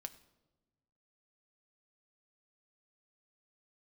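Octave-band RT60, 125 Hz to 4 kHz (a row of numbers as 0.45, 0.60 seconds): 1.8, 1.6, 1.3, 0.95, 0.70, 0.70 seconds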